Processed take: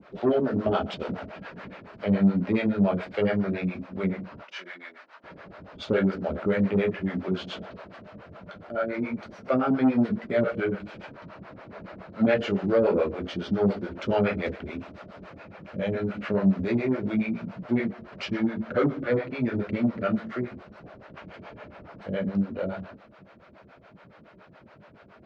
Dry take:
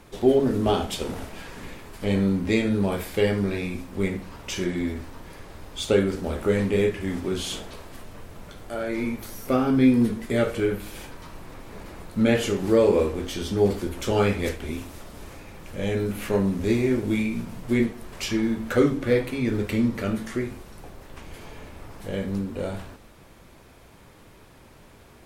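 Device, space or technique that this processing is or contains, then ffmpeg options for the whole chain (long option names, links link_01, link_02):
guitar amplifier with harmonic tremolo: -filter_complex "[0:a]asettb=1/sr,asplit=3[link_01][link_02][link_03];[link_01]atrim=end=4.444[link_04];[link_02]atrim=start=4.44:end=5.24,asetpts=PTS-STARTPTS,afade=type=in:duration=0.004:curve=qsin,afade=type=out:start_time=0.796:duration=0.004:curve=qsin,highpass=1100[link_05];[link_03]atrim=start=5.236[link_06];[link_04][link_05]acrossfade=duration=0.004:curve1=hsin:curve2=qsin[link_07];[link_07][link_06]acrossfade=duration=0.004:curve1=qsin:curve2=hsin,acrossover=split=430[link_08][link_09];[link_08]aeval=exprs='val(0)*(1-1/2+1/2*cos(2*PI*7.1*n/s))':channel_layout=same[link_10];[link_09]aeval=exprs='val(0)*(1-1/2-1/2*cos(2*PI*7.1*n/s))':channel_layout=same[link_11];[link_10][link_11]amix=inputs=2:normalize=0,asoftclip=type=tanh:threshold=-18dB,highpass=100,equalizer=frequency=190:width_type=q:width=4:gain=7,equalizer=frequency=620:width_type=q:width=4:gain=9,equalizer=frequency=1400:width_type=q:width=4:gain=7,equalizer=frequency=3500:width_type=q:width=4:gain=-5,lowpass=frequency=4000:width=0.5412,lowpass=frequency=4000:width=1.3066,volume=1.5dB"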